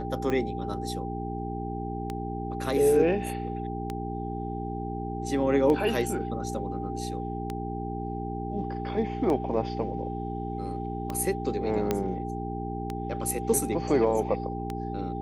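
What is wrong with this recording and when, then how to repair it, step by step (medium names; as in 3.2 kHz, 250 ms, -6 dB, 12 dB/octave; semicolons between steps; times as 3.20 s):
hum 60 Hz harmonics 7 -34 dBFS
tick 33 1/3 rpm -18 dBFS
whine 790 Hz -36 dBFS
11.91 s: pop -12 dBFS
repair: de-click; band-stop 790 Hz, Q 30; de-hum 60 Hz, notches 7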